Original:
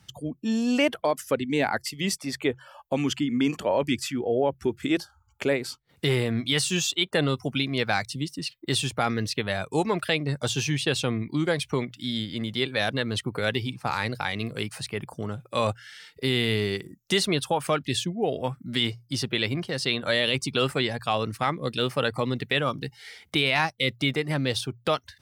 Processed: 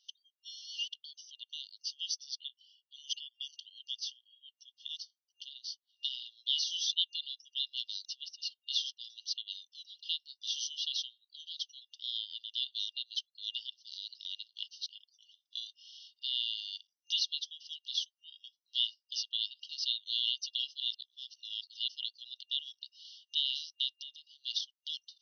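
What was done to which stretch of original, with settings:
0:20.80–0:21.88: reverse
0:23.94–0:24.44: downward compressor 12 to 1, threshold −31 dBFS
whole clip: brick-wall band-pass 2,800–6,200 Hz; level −3.5 dB

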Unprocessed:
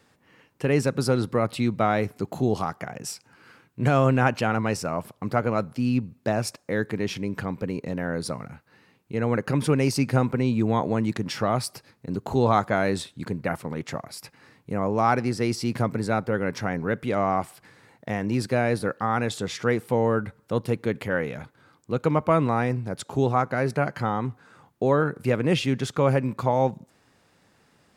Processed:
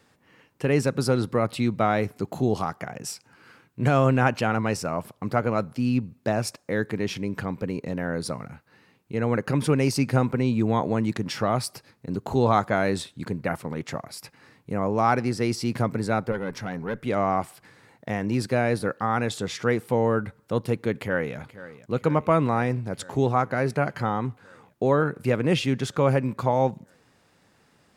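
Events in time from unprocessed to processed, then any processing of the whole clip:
0:16.32–0:17.06: tube saturation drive 18 dB, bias 0.55
0:20.97–0:21.37: delay throw 480 ms, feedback 80%, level −16 dB

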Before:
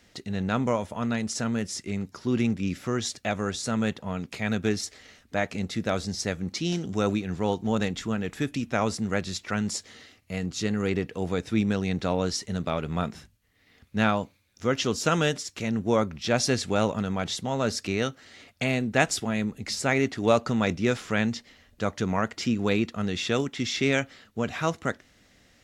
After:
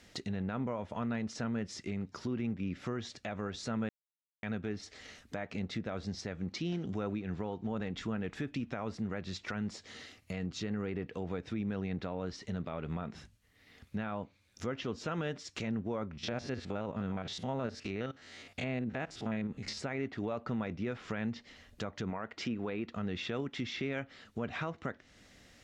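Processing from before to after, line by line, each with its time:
0:03.89–0:04.43: silence
0:16.13–0:19.78: spectrum averaged block by block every 50 ms
0:22.10–0:22.88: bass and treble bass −6 dB, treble −7 dB
whole clip: downward compressor 2 to 1, threshold −37 dBFS; treble cut that deepens with the level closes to 2,400 Hz, closed at −31 dBFS; brickwall limiter −26.5 dBFS

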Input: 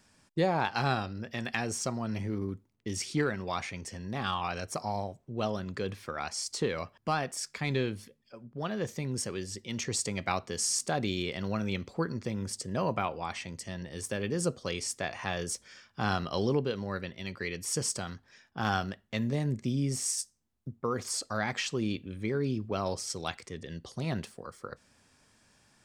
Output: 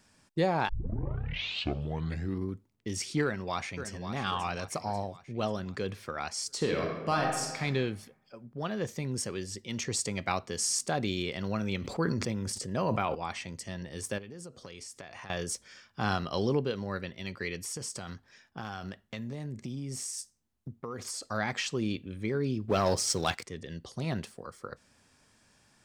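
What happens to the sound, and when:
0:00.69: tape start 1.82 s
0:03.23–0:04.01: delay throw 540 ms, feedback 50%, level −9 dB
0:06.56–0:07.61: thrown reverb, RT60 1.2 s, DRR 0 dB
0:11.80–0:13.15: level that may fall only so fast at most 30 dB per second
0:14.18–0:15.30: downward compressor 10 to 1, threshold −41 dBFS
0:17.59–0:21.23: downward compressor, threshold −34 dBFS
0:22.68–0:23.46: leveller curve on the samples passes 2

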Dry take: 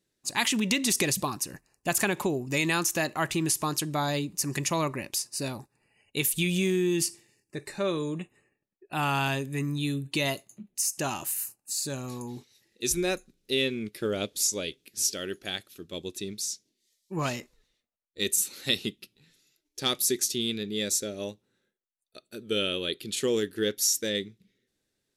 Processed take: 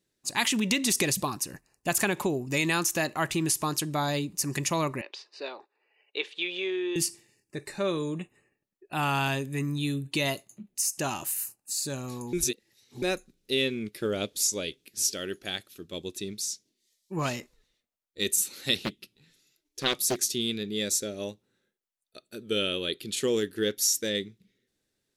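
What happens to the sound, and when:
0:05.01–0:06.96: elliptic band-pass filter 400–3,800 Hz, stop band 60 dB
0:12.33–0:13.02: reverse
0:18.75–0:20.21: highs frequency-modulated by the lows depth 0.66 ms

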